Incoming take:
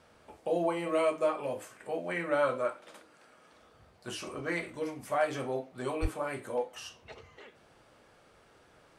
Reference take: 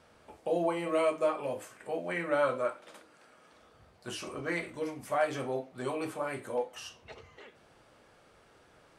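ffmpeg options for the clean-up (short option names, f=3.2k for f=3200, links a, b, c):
-filter_complex "[0:a]asplit=3[a][b][c];[a]afade=t=out:st=6.01:d=0.02[d];[b]highpass=f=140:w=0.5412,highpass=f=140:w=1.3066,afade=t=in:st=6.01:d=0.02,afade=t=out:st=6.13:d=0.02[e];[c]afade=t=in:st=6.13:d=0.02[f];[d][e][f]amix=inputs=3:normalize=0"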